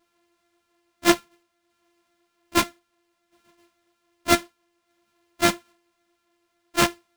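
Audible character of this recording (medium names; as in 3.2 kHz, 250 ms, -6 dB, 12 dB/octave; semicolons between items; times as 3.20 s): a buzz of ramps at a fixed pitch in blocks of 128 samples; tremolo saw down 0.59 Hz, depth 35%; aliases and images of a low sample rate 13 kHz, jitter 0%; a shimmering, thickened sound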